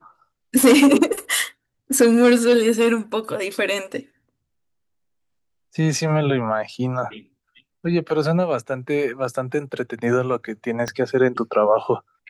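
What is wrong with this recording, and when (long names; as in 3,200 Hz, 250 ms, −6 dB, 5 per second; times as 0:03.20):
0:10.88: click −12 dBFS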